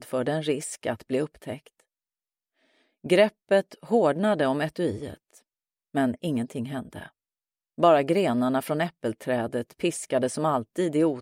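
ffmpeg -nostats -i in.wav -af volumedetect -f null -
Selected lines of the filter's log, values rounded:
mean_volume: -26.6 dB
max_volume: -6.6 dB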